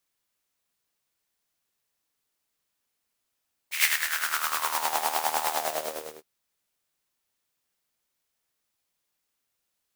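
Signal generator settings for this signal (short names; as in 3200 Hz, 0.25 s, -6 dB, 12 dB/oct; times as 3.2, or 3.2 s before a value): synth patch with tremolo D#2, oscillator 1 saw, detune 27 cents, noise -6 dB, filter highpass, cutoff 410 Hz, Q 4.6, filter envelope 2.5 oct, filter decay 1.22 s, attack 0.122 s, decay 0.15 s, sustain -7.5 dB, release 0.74 s, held 1.78 s, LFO 9.8 Hz, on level 9.5 dB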